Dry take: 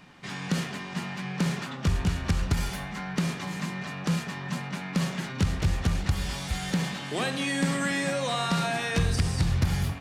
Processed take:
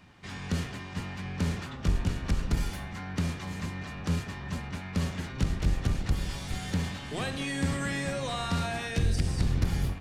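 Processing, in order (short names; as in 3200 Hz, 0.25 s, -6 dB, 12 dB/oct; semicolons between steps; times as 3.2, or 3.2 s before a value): octaver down 1 oct, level +1 dB; 8.87–9.28 bell 1100 Hz -8 dB 0.63 oct; gain -5 dB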